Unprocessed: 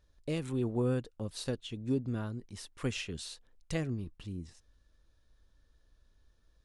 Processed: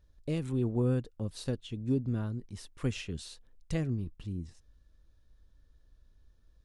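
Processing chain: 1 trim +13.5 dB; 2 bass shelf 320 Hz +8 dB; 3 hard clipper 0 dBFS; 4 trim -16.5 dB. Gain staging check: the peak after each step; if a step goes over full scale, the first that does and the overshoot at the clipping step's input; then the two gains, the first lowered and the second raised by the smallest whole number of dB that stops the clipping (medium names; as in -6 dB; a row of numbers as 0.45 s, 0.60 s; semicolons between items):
-8.0 dBFS, -2.5 dBFS, -2.5 dBFS, -19.0 dBFS; nothing clips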